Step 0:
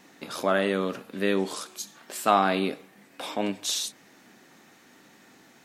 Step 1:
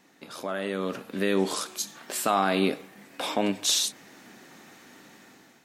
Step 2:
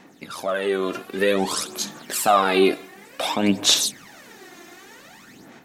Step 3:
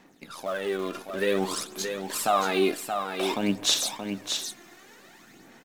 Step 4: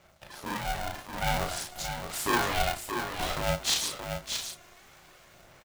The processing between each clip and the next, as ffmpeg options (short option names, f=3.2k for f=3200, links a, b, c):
-filter_complex "[0:a]acrossover=split=6100[a][b];[a]alimiter=limit=-17dB:level=0:latency=1:release=197[c];[c][b]amix=inputs=2:normalize=0,dynaudnorm=f=370:g=5:m=11dB,volume=-6dB"
-af "aphaser=in_gain=1:out_gain=1:delay=2.9:decay=0.65:speed=0.54:type=sinusoidal,volume=4dB"
-filter_complex "[0:a]asplit=2[a][b];[b]acrusher=bits=5:dc=4:mix=0:aa=0.000001,volume=-11dB[c];[a][c]amix=inputs=2:normalize=0,aecho=1:1:626:0.473,volume=-8.5dB"
-filter_complex "[0:a]asplit=2[a][b];[b]adelay=35,volume=-3dB[c];[a][c]amix=inputs=2:normalize=0,aeval=exprs='val(0)*sgn(sin(2*PI*360*n/s))':c=same,volume=-5dB"